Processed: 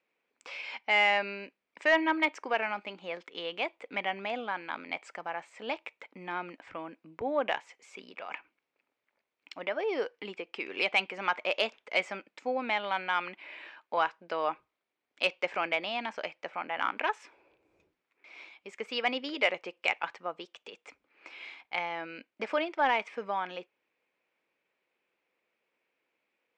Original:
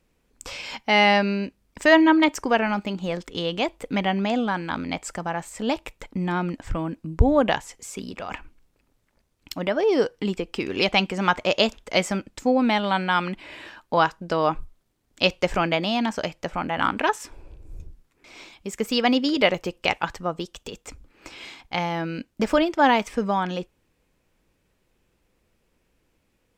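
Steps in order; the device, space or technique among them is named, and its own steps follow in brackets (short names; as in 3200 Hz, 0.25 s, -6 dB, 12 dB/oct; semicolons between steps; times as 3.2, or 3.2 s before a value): intercom (BPF 470–3500 Hz; bell 2300 Hz +7 dB 0.42 oct; soft clip -4.5 dBFS, distortion -24 dB); gain -7.5 dB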